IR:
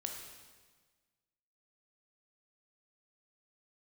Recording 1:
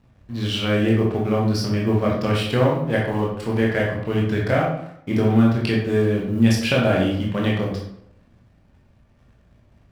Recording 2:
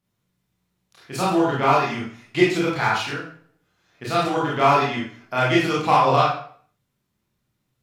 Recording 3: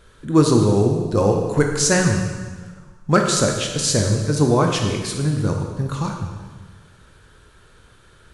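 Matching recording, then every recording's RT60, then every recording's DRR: 3; 0.75, 0.50, 1.4 s; -4.0, -6.0, 2.0 dB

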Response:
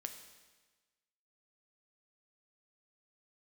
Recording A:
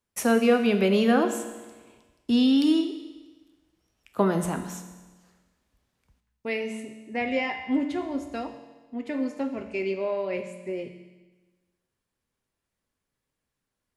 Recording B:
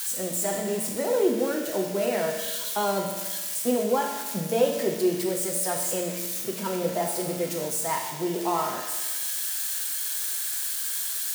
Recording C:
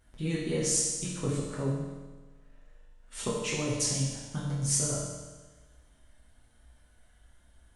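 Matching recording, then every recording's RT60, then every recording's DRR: A; 1.3, 1.3, 1.3 s; 6.0, 0.0, -7.0 dB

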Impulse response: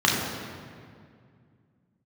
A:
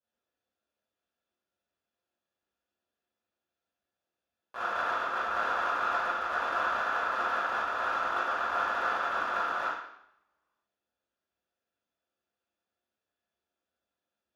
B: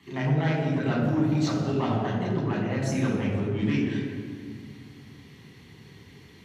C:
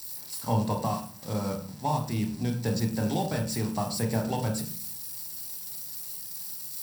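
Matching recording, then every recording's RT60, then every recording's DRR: B; 0.70, 2.2, 0.45 s; -12.5, -4.0, 2.0 dB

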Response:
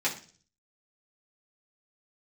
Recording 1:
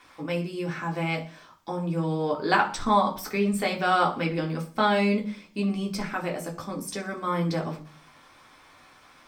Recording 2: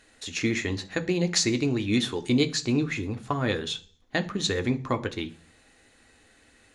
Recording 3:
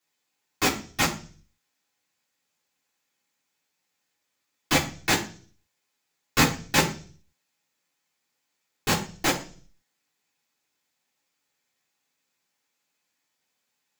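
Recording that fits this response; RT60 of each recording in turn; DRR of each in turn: 3; 0.40, 0.40, 0.40 s; -1.5, 7.5, -6.5 dB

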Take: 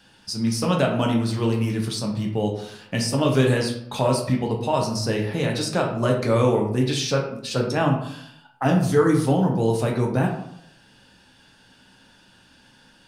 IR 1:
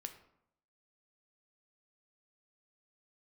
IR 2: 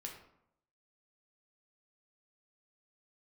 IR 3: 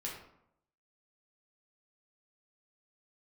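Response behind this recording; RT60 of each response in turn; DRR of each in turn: 2; 0.75, 0.75, 0.75 s; 6.5, 0.0, -4.0 dB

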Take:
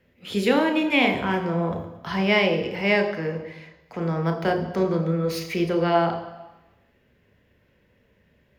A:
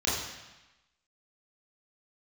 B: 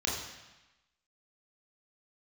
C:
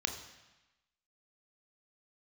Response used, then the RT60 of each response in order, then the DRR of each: C; 1.0, 1.0, 1.0 s; -8.0, -3.5, 5.5 dB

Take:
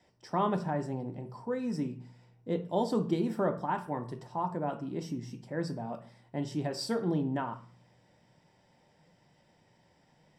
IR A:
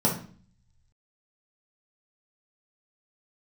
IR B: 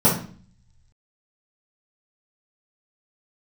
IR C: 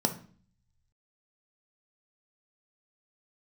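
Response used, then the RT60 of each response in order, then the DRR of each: C; 0.45, 0.45, 0.45 s; -3.5, -10.5, 5.5 dB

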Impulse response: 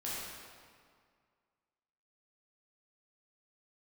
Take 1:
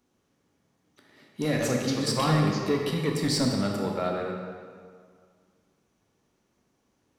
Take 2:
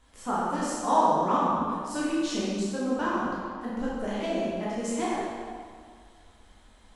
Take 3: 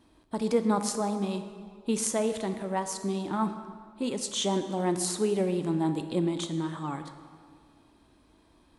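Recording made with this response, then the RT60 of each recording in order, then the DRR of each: 2; 2.0, 2.0, 2.0 s; 0.5, -8.5, 8.0 dB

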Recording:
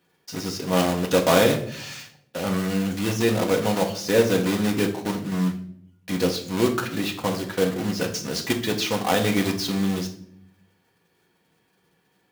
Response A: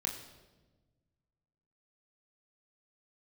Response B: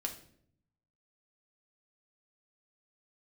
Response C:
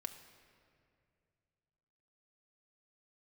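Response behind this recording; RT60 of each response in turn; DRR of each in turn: B; 1.2, 0.65, 2.4 s; -0.5, 2.0, 5.5 dB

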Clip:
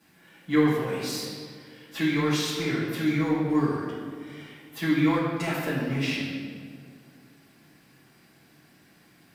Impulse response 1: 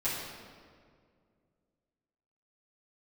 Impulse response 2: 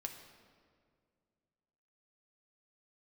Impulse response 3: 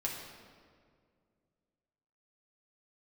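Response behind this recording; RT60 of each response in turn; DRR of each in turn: 1; 2.1, 2.1, 2.1 s; -12.0, 3.5, -3.0 dB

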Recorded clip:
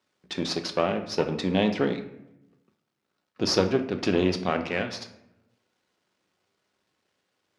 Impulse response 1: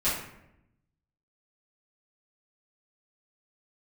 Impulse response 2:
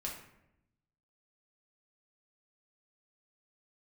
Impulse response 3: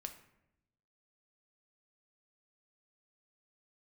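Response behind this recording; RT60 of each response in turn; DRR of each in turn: 3; 0.80, 0.80, 0.85 s; -12.0, -2.5, 6.0 dB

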